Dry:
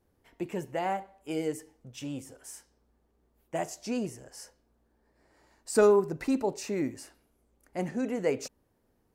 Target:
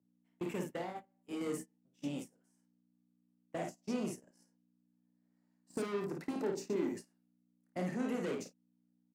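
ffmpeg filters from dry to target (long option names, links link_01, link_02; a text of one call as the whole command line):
ffmpeg -i in.wav -filter_complex "[0:a]aeval=exprs='val(0)+0.00794*(sin(2*PI*60*n/s)+sin(2*PI*2*60*n/s)/2+sin(2*PI*3*60*n/s)/3+sin(2*PI*4*60*n/s)/4+sin(2*PI*5*60*n/s)/5)':channel_layout=same,asoftclip=type=tanh:threshold=-29.5dB,asettb=1/sr,asplit=3[link_01][link_02][link_03];[link_01]atrim=end=6.354[link_04];[link_02]atrim=start=6.35:end=6.97,asetpts=PTS-STARTPTS,afade=type=in:duration=0.004:curve=qsin,afade=type=out:start_time=0.616:duration=0.004:curve=qsin,equalizer=frequency=400:width_type=o:width=0.67:gain=10,equalizer=frequency=2500:width_type=o:width=0.67:gain=-4,equalizer=frequency=10000:width_type=o:width=0.67:gain=-5[link_05];[link_03]atrim=start=6.966[link_06];[link_04][link_05]acrossfade=duration=0.004:curve1=hsin:curve2=qsin[link_07];[link_07][link_06]acrossfade=duration=0.004:curve1=qsin:curve2=hsin,acrossover=split=290|950[link_08][link_09][link_10];[link_08]acompressor=threshold=-41dB:ratio=4[link_11];[link_09]acompressor=threshold=-46dB:ratio=4[link_12];[link_10]acompressor=threshold=-51dB:ratio=4[link_13];[link_11][link_12][link_13]amix=inputs=3:normalize=0,highpass=frequency=160:width=0.5412,highpass=frequency=160:width=1.3066,asettb=1/sr,asplit=3[link_14][link_15][link_16];[link_14]atrim=end=0.764[link_17];[link_15]atrim=start=0.76:end=1.41,asetpts=PTS-STARTPTS,afade=type=in:duration=0.004:curve=qsin,afade=type=out:start_time=0.646:duration=0.004:curve=qsin,acompressor=threshold=-42dB:ratio=6[link_18];[link_16]atrim=start=1.406[link_19];[link_17][link_18]acrossfade=duration=0.004:curve1=hsin:curve2=qsin[link_20];[link_20][link_19]acrossfade=duration=0.004:curve1=qsin:curve2=hsin,asplit=3[link_21][link_22][link_23];[link_21]afade=type=out:start_time=2.32:duration=0.02[link_24];[link_22]highshelf=frequency=5600:gain=-6,afade=type=in:start_time=2.32:duration=0.02,afade=type=out:start_time=3.71:duration=0.02[link_25];[link_23]afade=type=in:start_time=3.71:duration=0.02[link_26];[link_24][link_25][link_26]amix=inputs=3:normalize=0,aecho=1:1:28|54:0.422|0.631,agate=range=-28dB:threshold=-43dB:ratio=16:detection=peak,volume=2.5dB" out.wav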